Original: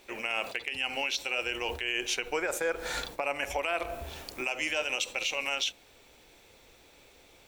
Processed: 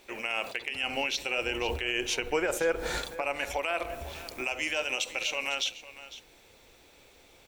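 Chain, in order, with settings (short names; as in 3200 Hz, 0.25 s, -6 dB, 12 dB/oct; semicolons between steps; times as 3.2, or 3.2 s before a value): 0.83–2.98 low shelf 440 Hz +8 dB; echo 0.504 s -15.5 dB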